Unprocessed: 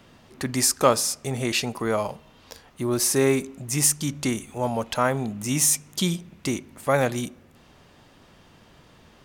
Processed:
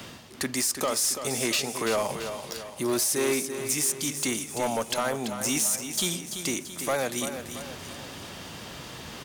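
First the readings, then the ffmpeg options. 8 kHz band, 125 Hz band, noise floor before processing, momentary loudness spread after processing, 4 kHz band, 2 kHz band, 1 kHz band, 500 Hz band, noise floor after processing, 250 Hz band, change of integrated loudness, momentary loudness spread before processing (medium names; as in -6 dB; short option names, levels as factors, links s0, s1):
-2.0 dB, -10.5 dB, -54 dBFS, 15 LU, -0.5 dB, -1.5 dB, -4.5 dB, -4.0 dB, -43 dBFS, -5.0 dB, -3.5 dB, 10 LU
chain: -filter_complex "[0:a]highpass=58,highshelf=f=2900:g=9,acrossover=split=220[s0][s1];[s0]acompressor=threshold=0.00708:ratio=6[s2];[s2][s1]amix=inputs=2:normalize=0,alimiter=limit=0.211:level=0:latency=1:release=243,areverse,acompressor=mode=upward:threshold=0.0316:ratio=2.5,areverse,asoftclip=type=hard:threshold=0.0891,aecho=1:1:337|674|1011|1348|1685:0.355|0.17|0.0817|0.0392|0.0188"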